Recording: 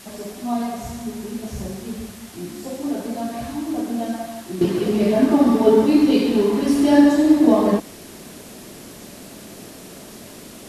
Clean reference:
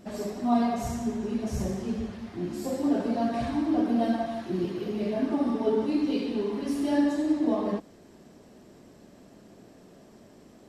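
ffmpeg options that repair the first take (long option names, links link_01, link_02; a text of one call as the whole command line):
ffmpeg -i in.wav -af "afwtdn=0.0079,asetnsamples=nb_out_samples=441:pad=0,asendcmd='4.61 volume volume -11.5dB',volume=0dB" out.wav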